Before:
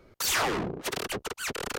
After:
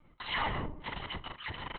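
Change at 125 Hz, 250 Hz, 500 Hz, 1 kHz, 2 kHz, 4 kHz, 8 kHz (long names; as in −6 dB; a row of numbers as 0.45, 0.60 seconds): −1.5 dB, −8.5 dB, −11.5 dB, −4.0 dB, −6.0 dB, −6.5 dB, below −40 dB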